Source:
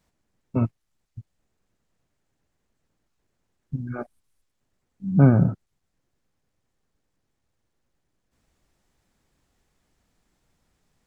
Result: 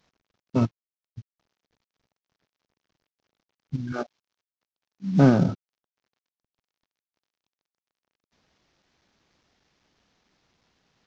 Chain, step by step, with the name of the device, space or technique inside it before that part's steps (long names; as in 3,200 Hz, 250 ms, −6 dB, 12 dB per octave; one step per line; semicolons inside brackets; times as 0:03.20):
0:03.92–0:05.49: high-pass filter 150 Hz 12 dB per octave
early wireless headset (high-pass filter 160 Hz 6 dB per octave; variable-slope delta modulation 32 kbit/s)
level +3.5 dB